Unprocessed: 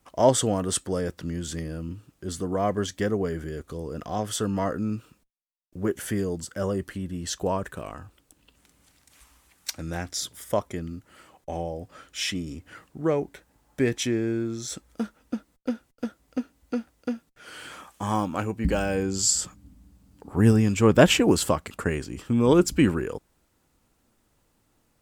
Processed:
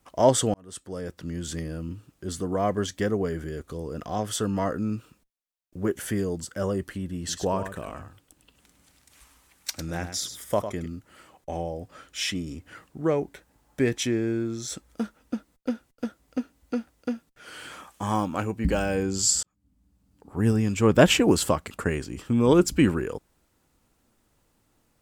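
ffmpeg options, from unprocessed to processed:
-filter_complex "[0:a]asettb=1/sr,asplit=3[a][b][c];[a]atrim=end=7.184[d];[b]atrim=start=7.18:end=10.86,asetpts=PTS-STARTPTS,afade=t=in:d=0.004:c=qsin,afade=t=out:st=3.676:d=0.004:c=qsin,aecho=1:1:102:0.335,atrim=end_sample=162288[e];[c]atrim=start=10.856[f];[d][e]acrossfade=d=0.004:c1=hsin:c2=qsin[g];[g][f]acrossfade=d=0.004:c1=qsin:c2=hsin,asplit=3[h][i][j];[h]atrim=end=0.54,asetpts=PTS-STARTPTS,afade=t=out:st=0.536:d=0.004:c=hsin[k];[i]atrim=start=0.54:end=19.43,asetpts=PTS-STARTPTS,afade=t=in:d=0.97,afade=t=out:st=18.886:d=0.004:c=hsin[l];[j]atrim=start=19.43,asetpts=PTS-STARTPTS,afade=t=in:d=1.7[m];[k][l][m]concat=n=3:v=0:a=1"

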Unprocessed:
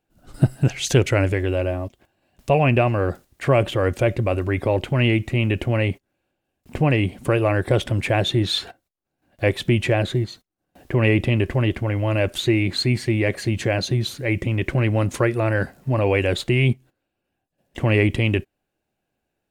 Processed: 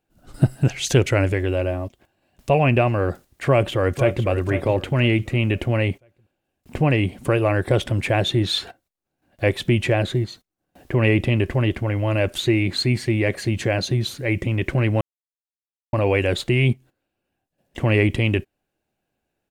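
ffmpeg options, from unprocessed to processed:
-filter_complex "[0:a]asplit=2[a][b];[b]afade=t=in:st=3.45:d=0.01,afade=t=out:st=4.26:d=0.01,aecho=0:1:500|1000|1500|2000:0.298538|0.104488|0.0365709|0.0127998[c];[a][c]amix=inputs=2:normalize=0,asplit=3[d][e][f];[d]atrim=end=15.01,asetpts=PTS-STARTPTS,afade=t=out:st=15.006:d=0.004:c=hsin[g];[e]atrim=start=15.01:end=15.93,asetpts=PTS-STARTPTS,volume=0[h];[f]atrim=start=15.93,asetpts=PTS-STARTPTS,afade=t=in:d=0.004:c=hsin[i];[g][h][i]concat=n=3:v=0:a=1"

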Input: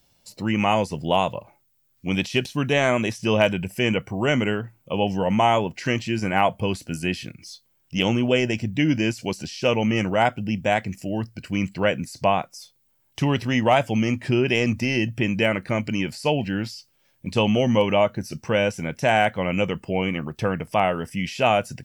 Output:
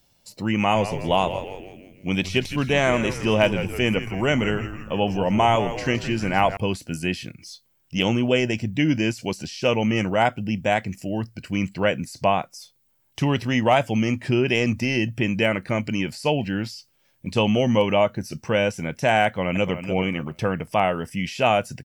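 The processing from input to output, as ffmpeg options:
-filter_complex "[0:a]asettb=1/sr,asplit=3[a][b][c];[a]atrim=end=0.584[d];[b]atrim=start=0.58:end=6.57,asetpts=PTS-STARTPTS,afade=t=in:d=0.004:c=qsin,afade=t=out:st=5.986:d=0.004:c=qsin,asplit=7[e][f][g][h][i][j][k];[f]adelay=163,afreqshift=-100,volume=-11dB[l];[g]adelay=326,afreqshift=-200,volume=-16.5dB[m];[h]adelay=489,afreqshift=-300,volume=-22dB[n];[i]adelay=652,afreqshift=-400,volume=-27.5dB[o];[j]adelay=815,afreqshift=-500,volume=-33.1dB[p];[k]adelay=978,afreqshift=-600,volume=-38.6dB[q];[e][l][m][n][o][p][q]amix=inputs=7:normalize=0,atrim=end_sample=264159[r];[c]atrim=start=6.566[s];[d][r]acrossfade=d=0.004:c1=hsin:c2=qsin[t];[t][s]acrossfade=d=0.004:c1=qsin:c2=hsin,asplit=2[u][v];[v]afade=t=in:st=19.26:d=0.01,afade=t=out:st=19.84:d=0.01,aecho=0:1:290|580|870:0.334965|0.0837414|0.0209353[w];[u][w]amix=inputs=2:normalize=0"

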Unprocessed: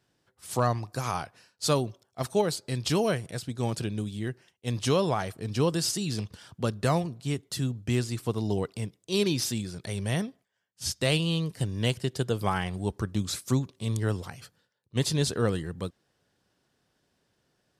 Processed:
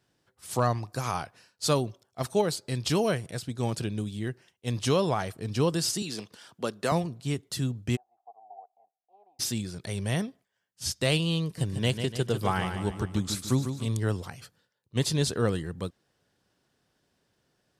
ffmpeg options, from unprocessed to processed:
-filter_complex "[0:a]asettb=1/sr,asplit=3[a][b][c];[a]atrim=end=6.024[d];[b]atrim=start=6.02:end=6.92,asetpts=PTS-STARTPTS,afade=t=in:d=0.004:c=qsin,afade=t=out:st=0.896:d=0.004:c=qsin,highpass=270[e];[c]atrim=start=6.916[f];[d][e]acrossfade=d=0.004:c1=hsin:c2=qsin[g];[g][f]acrossfade=d=0.004:c1=qsin:c2=hsin,asplit=3[h][i][j];[h]afade=t=out:st=7.95:d=0.02[k];[i]asuperpass=centerf=750:order=4:qfactor=7.3,afade=t=in:st=7.95:d=0.02,afade=t=out:st=9.39:d=0.02[l];[j]afade=t=in:st=9.39:d=0.02[m];[k][l][m]amix=inputs=3:normalize=0,asettb=1/sr,asplit=3[n][o][p];[n]atrim=end=11.434[q];[o]atrim=start=11.43:end=13.86,asetpts=PTS-STARTPTS,afade=t=in:d=0.004:c=qsin,afade=t=out:st=2.426:d=0.004:c=qsin,aecho=1:1:147|294|441|588|735:0.398|0.183|0.0842|0.0388|0.0178,atrim=end_sample=107163[r];[p]atrim=start=13.856[s];[q][r]acrossfade=d=0.004:c1=hsin:c2=qsin[t];[t][s]acrossfade=d=0.004:c1=qsin:c2=hsin"

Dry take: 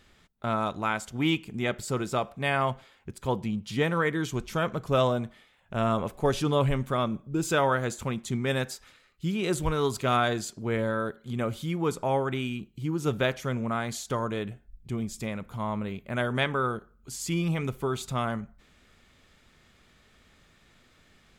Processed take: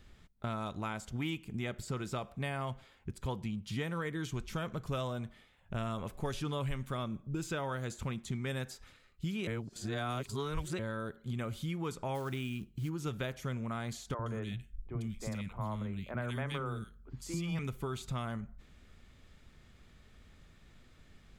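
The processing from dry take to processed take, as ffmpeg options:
-filter_complex "[0:a]asplit=3[a][b][c];[a]afade=t=out:st=12.14:d=0.02[d];[b]acrusher=bits=6:mode=log:mix=0:aa=0.000001,afade=t=in:st=12.14:d=0.02,afade=t=out:st=12.88:d=0.02[e];[c]afade=t=in:st=12.88:d=0.02[f];[d][e][f]amix=inputs=3:normalize=0,asettb=1/sr,asplit=3[g][h][i];[g]atrim=end=14.144[j];[h]atrim=start=14.14:end=17.59,asetpts=PTS-STARTPTS,afade=t=in:d=0.004:c=qsin,afade=t=out:st=3.446:d=0.004:c=qsin,acrossover=split=320|2000[k][l][m];[k]adelay=50[n];[m]adelay=120[o];[n][l][o]amix=inputs=3:normalize=0,atrim=end_sample=152145[p];[i]atrim=start=17.586[q];[j][p]acrossfade=d=0.004:c1=hsin:c2=qsin[r];[r][q]acrossfade=d=0.004:c1=qsin:c2=hsin,asplit=3[s][t][u];[s]atrim=end=9.472[v];[t]atrim=start=9.468:end=10.792,asetpts=PTS-STARTPTS,areverse[w];[u]atrim=start=10.788[x];[v][w]acrossfade=d=0.004:c1=hsin:c2=hsin[y];[y][x]acrossfade=d=0.004:c1=hsin:c2=hsin,lowshelf=f=120:g=8,acrossover=split=1100|2800|6400[z][aa][ab][ac];[z]acompressor=threshold=-34dB:ratio=4[ad];[aa]acompressor=threshold=-39dB:ratio=4[ae];[ab]acompressor=threshold=-45dB:ratio=4[af];[ac]acompressor=threshold=-49dB:ratio=4[ag];[ad][ae][af][ag]amix=inputs=4:normalize=0,lowshelf=f=370:g=4.5,volume=-5dB"

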